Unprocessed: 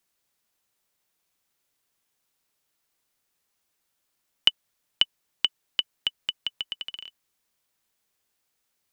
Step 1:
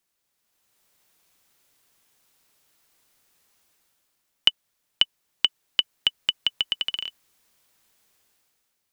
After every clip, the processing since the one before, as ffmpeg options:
-af "dynaudnorm=f=120:g=11:m=3.76,volume=0.891"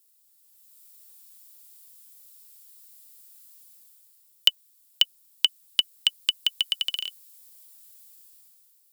-filter_complex "[0:a]equalizer=f=6100:t=o:w=0.29:g=-5.5,acrossover=split=2900[s0][s1];[s1]crystalizer=i=7:c=0[s2];[s0][s2]amix=inputs=2:normalize=0,volume=0.501"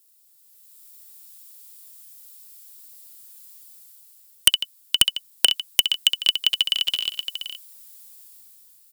-filter_complex "[0:a]asplit=2[s0][s1];[s1]aecho=0:1:66|151|471:0.398|0.188|0.447[s2];[s0][s2]amix=inputs=2:normalize=0,aeval=exprs='(mod(1.88*val(0)+1,2)-1)/1.88':c=same,volume=1.58"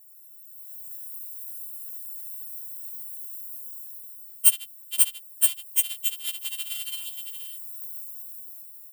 -filter_complex "[0:a]acrossover=split=410|3100[s0][s1][s2];[s2]aexciter=amount=7.5:drive=4.2:freq=7600[s3];[s0][s1][s3]amix=inputs=3:normalize=0,afftfilt=real='re*4*eq(mod(b,16),0)':imag='im*4*eq(mod(b,16),0)':win_size=2048:overlap=0.75,volume=0.376"

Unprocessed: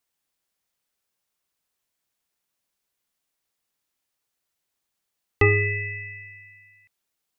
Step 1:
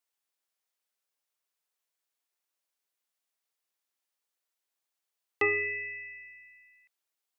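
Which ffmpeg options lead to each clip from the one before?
-af "highpass=390,volume=0.501"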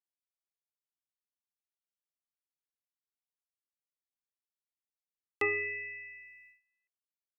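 -af "agate=range=0.112:threshold=0.00178:ratio=16:detection=peak,volume=0.668"

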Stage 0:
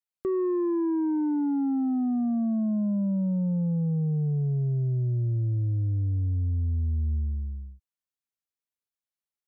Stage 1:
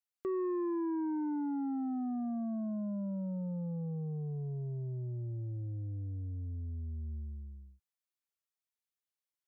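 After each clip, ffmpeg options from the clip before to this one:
-af "lowshelf=f=330:g=-11.5,volume=0.75"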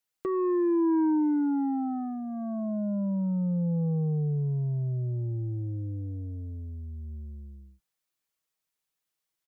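-af "aecho=1:1:6.3:0.5,volume=2.24"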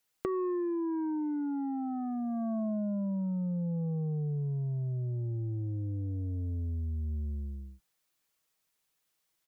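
-af "acompressor=threshold=0.0141:ratio=12,volume=2"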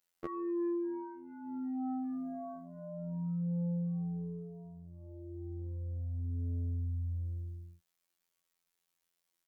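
-af "afftfilt=real='hypot(re,im)*cos(PI*b)':imag='0':win_size=2048:overlap=0.75,volume=0.891"

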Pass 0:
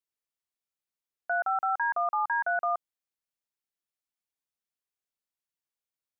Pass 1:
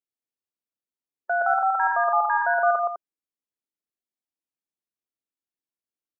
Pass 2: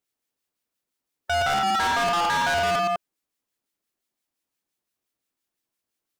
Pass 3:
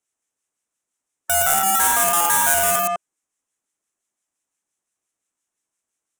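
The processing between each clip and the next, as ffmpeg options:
-af "afftdn=nr=12:nf=-45,equalizer=f=290:w=0.78:g=12.5,aecho=1:1:116.6|201.2:0.794|0.355,volume=1.19"
-filter_complex "[0:a]asplit=2[s0][s1];[s1]alimiter=limit=0.106:level=0:latency=1:release=293,volume=1.12[s2];[s0][s2]amix=inputs=2:normalize=0,acrossover=split=1400[s3][s4];[s3]aeval=exprs='val(0)*(1-0.5/2+0.5/2*cos(2*PI*5.8*n/s))':c=same[s5];[s4]aeval=exprs='val(0)*(1-0.5/2-0.5/2*cos(2*PI*5.8*n/s))':c=same[s6];[s5][s6]amix=inputs=2:normalize=0,asoftclip=type=hard:threshold=0.0398,volume=2.11"
-filter_complex "[0:a]equalizer=f=1200:t=o:w=2.5:g=5,acrossover=split=360|6200[s0][s1][s2];[s2]acrusher=bits=6:mix=0:aa=0.000001[s3];[s0][s1][s3]amix=inputs=3:normalize=0,aexciter=amount=15.7:drive=8.1:freq=7000,volume=0.75"

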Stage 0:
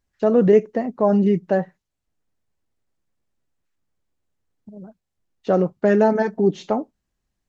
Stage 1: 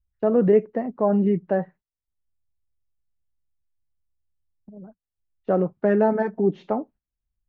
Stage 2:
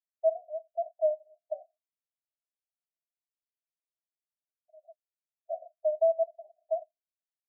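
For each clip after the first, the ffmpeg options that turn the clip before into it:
-filter_complex "[0:a]agate=range=0.158:threshold=0.00631:ratio=16:detection=peak,lowpass=2100,acrossover=split=100[s0][s1];[s0]acompressor=mode=upward:threshold=0.00178:ratio=2.5[s2];[s2][s1]amix=inputs=2:normalize=0,volume=0.708"
-af "asuperpass=centerf=660:order=8:qfactor=6.9"

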